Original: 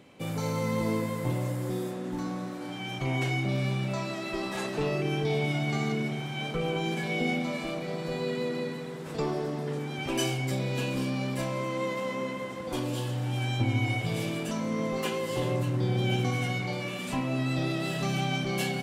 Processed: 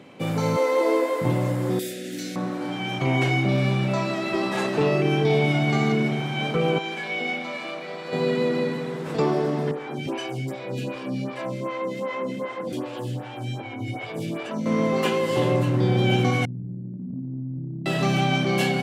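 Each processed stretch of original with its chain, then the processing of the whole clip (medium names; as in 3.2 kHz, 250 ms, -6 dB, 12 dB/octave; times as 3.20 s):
0.56–1.21 s: brick-wall FIR high-pass 260 Hz + peaking EQ 590 Hz +5 dB 0.85 oct
1.79–2.36 s: Butterworth band-stop 990 Hz, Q 0.74 + tilt EQ +4 dB/octave
6.78–8.13 s: high-pass 1.2 kHz 6 dB/octave + treble shelf 6 kHz -9.5 dB
9.71–14.66 s: compression, threshold -30 dBFS + lamp-driven phase shifter 2.6 Hz
16.45–17.86 s: one-bit delta coder 32 kbps, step -31 dBFS + inverse Chebyshev low-pass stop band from 830 Hz, stop band 60 dB + compression 3:1, threshold -37 dBFS
whole clip: high-pass 120 Hz; treble shelf 5 kHz -9 dB; trim +8.5 dB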